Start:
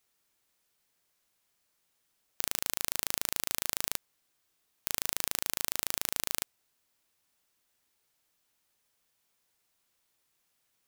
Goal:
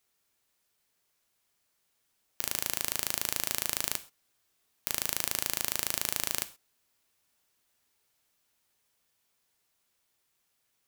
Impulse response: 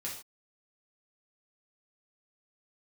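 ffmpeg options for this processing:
-filter_complex "[0:a]dynaudnorm=f=440:g=11:m=11.5dB,asplit=2[a][b];[1:a]atrim=start_sample=2205,asetrate=52920,aresample=44100[c];[b][c]afir=irnorm=-1:irlink=0,volume=-6.5dB[d];[a][d]amix=inputs=2:normalize=0,volume=-2dB"

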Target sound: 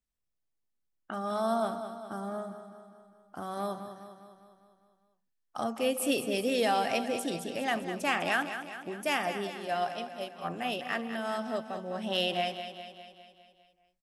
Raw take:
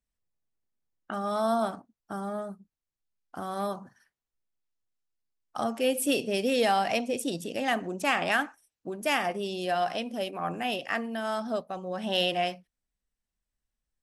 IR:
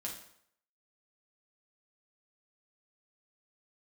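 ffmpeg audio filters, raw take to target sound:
-filter_complex "[0:a]asplit=3[a][b][c];[a]afade=t=out:st=9.46:d=0.02[d];[b]agate=range=-33dB:threshold=-26dB:ratio=3:detection=peak,afade=t=in:st=9.46:d=0.02,afade=t=out:st=10.44:d=0.02[e];[c]afade=t=in:st=10.44:d=0.02[f];[d][e][f]amix=inputs=3:normalize=0,aecho=1:1:202|404|606|808|1010|1212|1414:0.316|0.18|0.103|0.0586|0.0334|0.019|0.0108,volume=-3dB"

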